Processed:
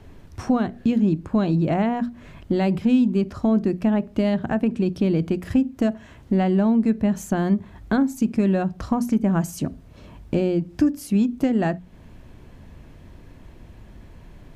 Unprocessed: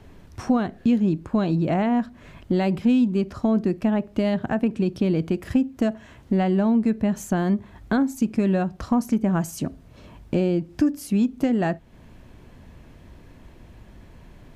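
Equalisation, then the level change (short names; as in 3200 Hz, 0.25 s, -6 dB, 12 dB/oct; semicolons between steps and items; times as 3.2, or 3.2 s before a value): low shelf 240 Hz +3.5 dB; notches 60/120/180/240 Hz; 0.0 dB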